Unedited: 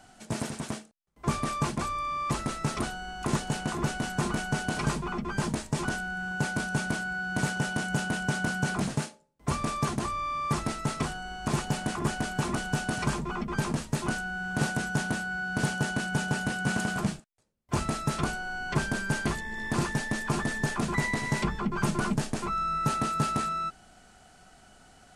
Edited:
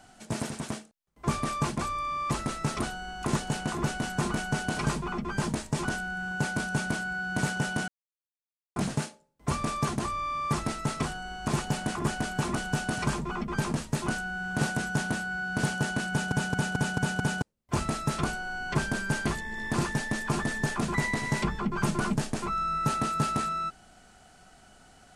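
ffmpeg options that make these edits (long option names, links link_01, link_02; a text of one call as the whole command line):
ffmpeg -i in.wav -filter_complex "[0:a]asplit=9[link_01][link_02][link_03][link_04][link_05][link_06][link_07][link_08][link_09];[link_01]atrim=end=7.88,asetpts=PTS-STARTPTS,afade=type=out:start_time=7.876:duration=0.004:curve=hsin[link_10];[link_02]atrim=start=7.88:end=8.76,asetpts=PTS-STARTPTS,volume=0[link_11];[link_03]atrim=start=8.76:end=16.322,asetpts=PTS-STARTPTS,afade=type=in:duration=0.004:curve=hsin[link_12];[link_04]atrim=start=16.098:end=16.322[link_13];[link_05]atrim=start=16.098:end=16.322[link_14];[link_06]atrim=start=16.098:end=16.322[link_15];[link_07]atrim=start=16.098:end=16.322[link_16];[link_08]atrim=start=16.098:end=16.322[link_17];[link_09]atrim=start=17.418[link_18];[link_10][link_11][link_12]concat=n=3:v=0:a=1[link_19];[link_19][link_13]acrossfade=duration=0.004:curve1=hsin:curve2=hsin[link_20];[link_20][link_14]acrossfade=duration=0.004:curve1=hsin:curve2=hsin[link_21];[link_21][link_15]acrossfade=duration=0.004:curve1=hsin:curve2=hsin[link_22];[link_22][link_16]acrossfade=duration=0.004:curve1=hsin:curve2=hsin[link_23];[link_23][link_17]acrossfade=duration=0.004:curve1=hsin:curve2=hsin[link_24];[link_24][link_18]acrossfade=duration=0.004:curve1=hsin:curve2=hsin" out.wav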